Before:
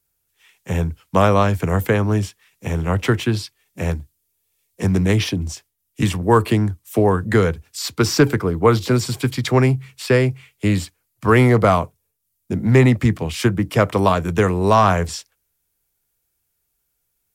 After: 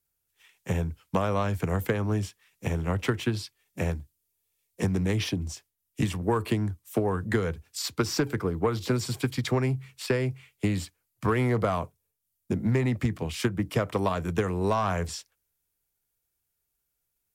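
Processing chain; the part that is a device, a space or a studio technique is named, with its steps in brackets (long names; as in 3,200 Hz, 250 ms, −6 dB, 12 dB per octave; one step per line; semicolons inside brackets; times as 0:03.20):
drum-bus smash (transient designer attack +6 dB, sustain +1 dB; downward compressor, threshold −12 dBFS, peak gain reduction 9 dB; soft clipping −6 dBFS, distortion −21 dB)
level −8 dB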